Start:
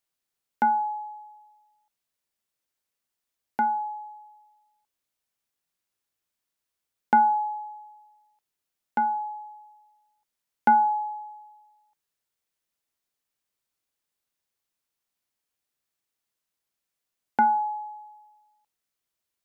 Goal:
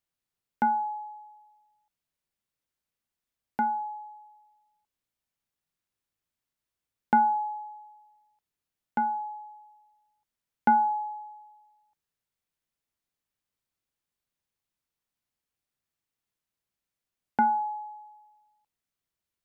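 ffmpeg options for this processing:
ffmpeg -i in.wav -af "bass=frequency=250:gain=7,treble=frequency=4000:gain=-3,volume=-3dB" out.wav

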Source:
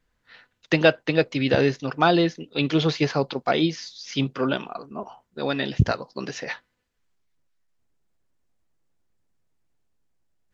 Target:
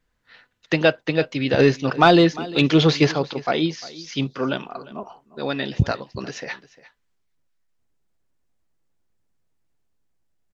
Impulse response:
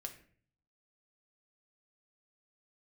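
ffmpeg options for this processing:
-filter_complex "[0:a]asettb=1/sr,asplit=3[link_01][link_02][link_03];[link_01]atrim=end=1.594[link_04];[link_02]atrim=start=1.59:end=3.12,asetpts=PTS-STARTPTS,afade=type=in:duration=0.004:curve=qsin,afade=type=out:start_time=1.526:duration=0.004:curve=qsin,acontrast=56[link_05];[link_03]atrim=start=3.116[link_06];[link_04][link_05]acrossfade=duration=0.004:curve1=hsin:curve2=qsin[link_07];[link_07][link_06]acrossfade=duration=0.004:curve1=qsin:curve2=hsin,aecho=1:1:351:0.112"

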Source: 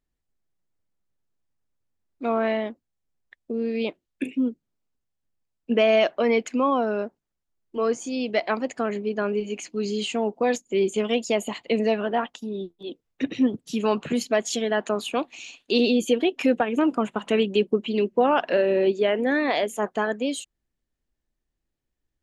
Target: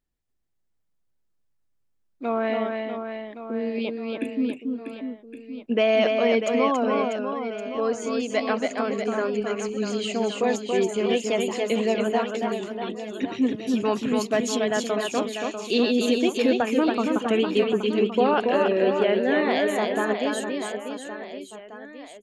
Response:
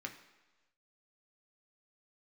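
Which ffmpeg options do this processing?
-af "aecho=1:1:280|644|1117|1732|2532:0.631|0.398|0.251|0.158|0.1,volume=-1.5dB"

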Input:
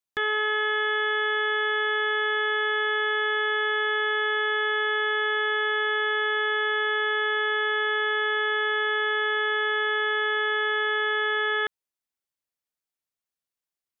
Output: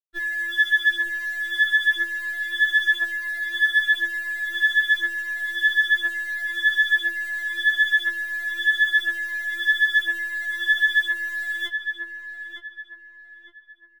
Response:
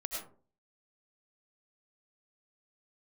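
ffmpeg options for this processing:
-filter_complex "[0:a]asettb=1/sr,asplit=3[link_01][link_02][link_03];[link_01]atrim=end=3.164[link_04];[link_02]atrim=start=3.16:end=3.81,asetpts=PTS-STARTPTS,afade=type=in:duration=0.004:curve=qsin,afade=type=out:start_time=0.646:duration=0.004:curve=qsin,lowshelf=frequency=160:gain=-2.5[link_05];[link_03]atrim=start=3.806[link_06];[link_04][link_05]acrossfade=duration=0.004:curve1=hsin:curve2=qsin[link_07];[link_07][link_06]acrossfade=duration=0.004:curve1=qsin:curve2=hsin,acrossover=split=480|780[link_08][link_09][link_10];[link_08]acontrast=66[link_11];[link_10]acrusher=bits=5:mode=log:mix=0:aa=0.000001[link_12];[link_11][link_09][link_12]amix=inputs=3:normalize=0,aphaser=in_gain=1:out_gain=1:delay=2.2:decay=0.68:speed=0.99:type=triangular,acrusher=bits=7:mix=0:aa=0.000001,asplit=2[link_13][link_14];[link_14]adelay=910,lowpass=frequency=2400:poles=1,volume=-6.5dB,asplit=2[link_15][link_16];[link_16]adelay=910,lowpass=frequency=2400:poles=1,volume=0.39,asplit=2[link_17][link_18];[link_18]adelay=910,lowpass=frequency=2400:poles=1,volume=0.39,asplit=2[link_19][link_20];[link_20]adelay=910,lowpass=frequency=2400:poles=1,volume=0.39,asplit=2[link_21][link_22];[link_22]adelay=910,lowpass=frequency=2400:poles=1,volume=0.39[link_23];[link_13][link_15][link_17][link_19][link_21][link_23]amix=inputs=6:normalize=0,afftfilt=real='re*4*eq(mod(b,16),0)':imag='im*4*eq(mod(b,16),0)':win_size=2048:overlap=0.75,volume=-1dB"

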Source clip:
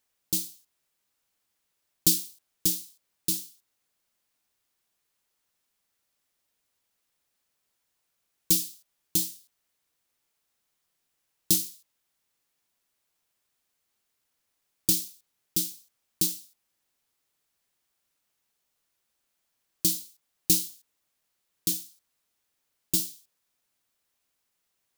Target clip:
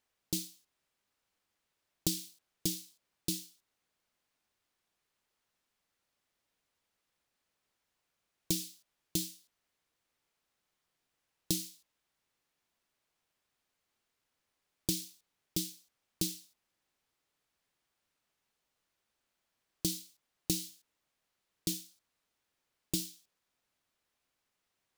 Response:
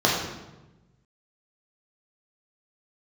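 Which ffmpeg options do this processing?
-af "lowpass=frequency=3700:poles=1,acompressor=threshold=-27dB:ratio=6"

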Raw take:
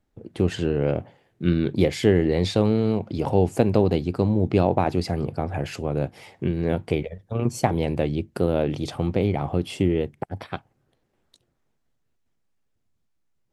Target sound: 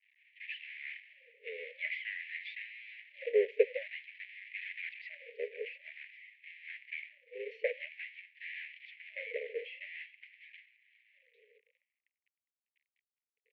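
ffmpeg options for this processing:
ffmpeg -i in.wav -filter_complex "[0:a]aeval=exprs='val(0)+0.5*0.0794*sgn(val(0))':channel_layout=same,agate=range=-33dB:threshold=-17dB:ratio=3:detection=peak,adynamicequalizer=threshold=0.0398:dfrequency=370:dqfactor=1.4:tfrequency=370:tqfactor=1.4:attack=5:release=100:ratio=0.375:range=2:mode=cutabove:tftype=bell,acrossover=split=590|1700[link_01][link_02][link_03];[link_02]aeval=exprs='val(0)*gte(abs(val(0)),0.0398)':channel_layout=same[link_04];[link_03]aecho=1:1:407:0.106[link_05];[link_01][link_04][link_05]amix=inputs=3:normalize=0,highpass=frequency=310:width_type=q:width=0.5412,highpass=frequency=310:width_type=q:width=1.307,lowpass=frequency=2300:width_type=q:width=0.5176,lowpass=frequency=2300:width_type=q:width=0.7071,lowpass=frequency=2300:width_type=q:width=1.932,afreqshift=-68,asuperstop=centerf=1000:order=12:qfactor=0.66,afftfilt=real='re*gte(b*sr/1024,400*pow(1600/400,0.5+0.5*sin(2*PI*0.5*pts/sr)))':imag='im*gte(b*sr/1024,400*pow(1600/400,0.5+0.5*sin(2*PI*0.5*pts/sr)))':win_size=1024:overlap=0.75,volume=2.5dB" out.wav

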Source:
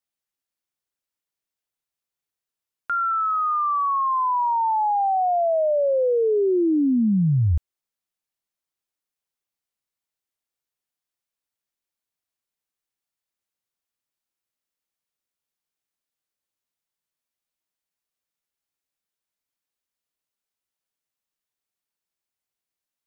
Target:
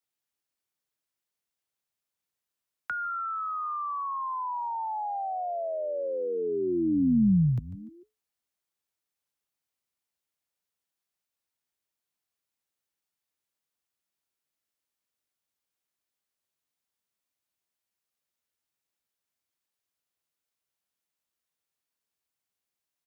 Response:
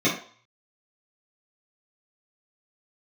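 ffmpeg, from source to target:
-filter_complex "[0:a]asplit=4[link_01][link_02][link_03][link_04];[link_02]adelay=147,afreqshift=-130,volume=-15dB[link_05];[link_03]adelay=294,afreqshift=-260,volume=-24.1dB[link_06];[link_04]adelay=441,afreqshift=-390,volume=-33.2dB[link_07];[link_01][link_05][link_06][link_07]amix=inputs=4:normalize=0,acrossover=split=110|270|600[link_08][link_09][link_10][link_11];[link_08]acompressor=threshold=-33dB:ratio=6[link_12];[link_12][link_09][link_10][link_11]amix=inputs=4:normalize=0,afreqshift=42,acrossover=split=240[link_13][link_14];[link_14]acompressor=threshold=-32dB:ratio=6[link_15];[link_13][link_15]amix=inputs=2:normalize=0"

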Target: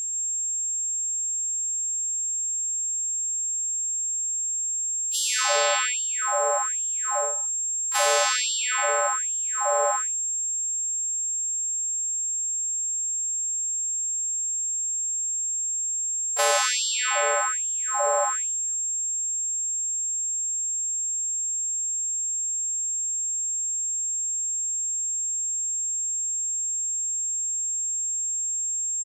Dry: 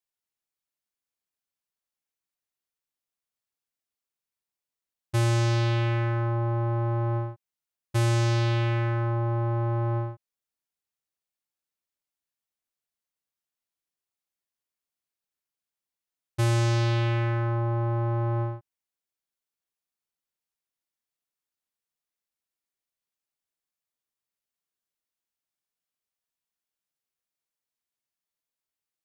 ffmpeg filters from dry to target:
ffmpeg -i in.wav -filter_complex "[0:a]equalizer=frequency=2200:width_type=o:width=0.77:gain=-2.5,acrossover=split=120[link_01][link_02];[link_02]dynaudnorm=framelen=230:gausssize=11:maxgain=15.5dB[link_03];[link_01][link_03]amix=inputs=2:normalize=0,asplit=3[link_04][link_05][link_06];[link_05]asetrate=33038,aresample=44100,atempo=1.33484,volume=-16dB[link_07];[link_06]asetrate=55563,aresample=44100,atempo=0.793701,volume=-13dB[link_08];[link_04][link_07][link_08]amix=inputs=3:normalize=0,aeval=exprs='val(0)+0.0631*sin(2*PI*7500*n/s)':channel_layout=same,aecho=1:1:132|160:0.141|0.112,afftfilt=real='re*gte(b*sr/1024,390*pow(2900/390,0.5+0.5*sin(2*PI*1.2*pts/sr)))':imag='im*gte(b*sr/1024,390*pow(2900/390,0.5+0.5*sin(2*PI*1.2*pts/sr)))':win_size=1024:overlap=0.75,volume=-2.5dB" out.wav

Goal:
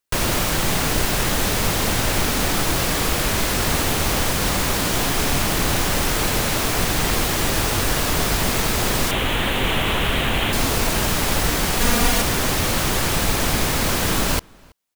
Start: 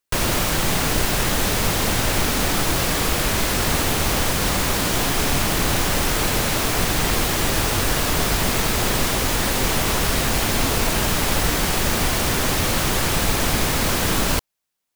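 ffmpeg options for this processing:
ffmpeg -i in.wav -filter_complex "[0:a]asettb=1/sr,asplit=3[link_01][link_02][link_03];[link_01]atrim=end=9.114[link_04];[link_02]atrim=start=9.11:end=10.53,asetpts=PTS-STARTPTS,afade=type=in:duration=0.004:curve=qsin,afade=type=out:start_time=1.416:duration=0.004:curve=qsin,highshelf=frequency=4000:width_type=q:width=3:gain=-7.5[link_05];[link_03]atrim=start=10.526[link_06];[link_04][link_05]acrossfade=duration=0.004:curve1=hsin:curve2=qsin[link_07];[link_07][link_06]acrossfade=duration=0.004:curve1=qsin:curve2=hsin,asettb=1/sr,asplit=3[link_08][link_09][link_10];[link_08]atrim=end=11.804[link_11];[link_09]atrim=start=11.8:end=12.22,asetpts=PTS-STARTPTS,afade=type=in:duration=0.004:curve=qsin,afade=type=out:start_time=0.416:duration=0.004:curve=qsin,aecho=1:1:4.2:0.9,atrim=end_sample=18522[link_12];[link_10]atrim=start=12.216[link_13];[link_11][link_12]acrossfade=duration=0.004:curve1=hsin:curve2=qsin[link_14];[link_14][link_13]acrossfade=duration=0.004:curve1=qsin:curve2=hsin,asplit=2[link_15][link_16];[link_16]adelay=326.5,volume=-27dB,highshelf=frequency=4000:gain=-7.35[link_17];[link_15][link_17]amix=inputs=2:normalize=0" out.wav

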